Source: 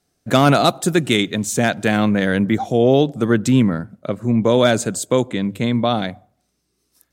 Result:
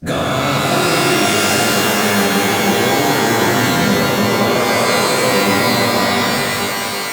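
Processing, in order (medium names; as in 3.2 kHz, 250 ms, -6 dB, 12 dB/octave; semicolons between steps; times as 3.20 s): every event in the spectrogram widened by 480 ms; compression 12:1, threshold -20 dBFS, peak gain reduction 17.5 dB; pitch-shifted reverb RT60 3.6 s, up +12 st, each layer -2 dB, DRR -2.5 dB; trim +2 dB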